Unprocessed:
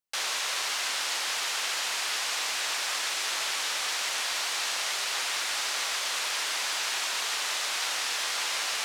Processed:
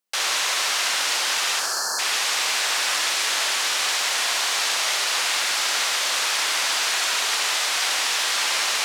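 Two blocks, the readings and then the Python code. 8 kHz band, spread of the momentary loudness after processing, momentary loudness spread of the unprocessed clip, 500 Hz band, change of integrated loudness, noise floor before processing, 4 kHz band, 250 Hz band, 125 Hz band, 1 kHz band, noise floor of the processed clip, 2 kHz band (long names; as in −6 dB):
+7.5 dB, 1 LU, 0 LU, +7.5 dB, +7.5 dB, −31 dBFS, +7.5 dB, +7.5 dB, can't be measured, +7.5 dB, −25 dBFS, +7.5 dB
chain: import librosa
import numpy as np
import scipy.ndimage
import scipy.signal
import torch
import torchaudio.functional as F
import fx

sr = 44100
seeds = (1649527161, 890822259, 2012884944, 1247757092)

y = scipy.signal.sosfilt(scipy.signal.butter(4, 150.0, 'highpass', fs=sr, output='sos'), x)
y = fx.spec_erase(y, sr, start_s=1.6, length_s=0.39, low_hz=1800.0, high_hz=4100.0)
y = fx.echo_feedback(y, sr, ms=66, feedback_pct=50, wet_db=-7.0)
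y = y * 10.0 ** (6.5 / 20.0)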